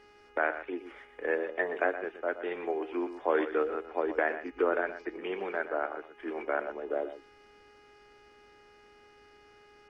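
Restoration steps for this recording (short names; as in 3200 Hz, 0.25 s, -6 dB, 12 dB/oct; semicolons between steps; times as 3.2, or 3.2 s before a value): de-hum 413.6 Hz, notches 7; inverse comb 0.121 s -11.5 dB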